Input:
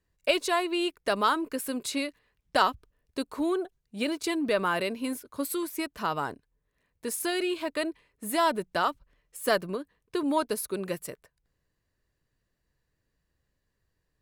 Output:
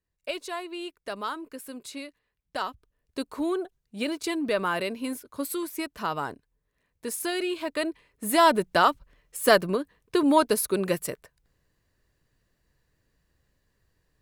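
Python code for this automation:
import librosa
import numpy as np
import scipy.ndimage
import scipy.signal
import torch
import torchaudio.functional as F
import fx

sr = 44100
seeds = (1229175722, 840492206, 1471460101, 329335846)

y = fx.gain(x, sr, db=fx.line((2.67, -8.0), (3.2, 0.0), (7.57, 0.0), (8.52, 6.5)))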